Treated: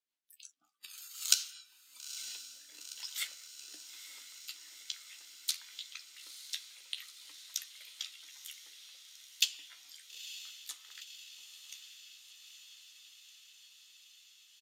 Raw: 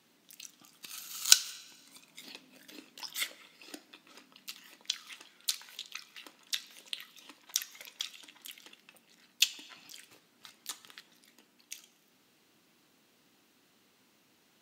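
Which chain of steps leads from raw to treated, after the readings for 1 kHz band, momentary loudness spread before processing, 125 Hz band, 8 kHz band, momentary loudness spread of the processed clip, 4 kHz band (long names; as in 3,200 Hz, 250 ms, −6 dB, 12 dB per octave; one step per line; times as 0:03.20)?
−9.5 dB, 21 LU, can't be measured, −4.0 dB, 22 LU, −3.5 dB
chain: noise reduction from a noise print of the clip's start 22 dB
low-pass filter 2,100 Hz 6 dB per octave
first difference
rotating-speaker cabinet horn 5.5 Hz, later 0.75 Hz, at 0:01.71
double-tracking delay 13 ms −8 dB
on a send: feedback delay with all-pass diffusion 917 ms, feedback 74%, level −11.5 dB
on the sum: level +10.5 dB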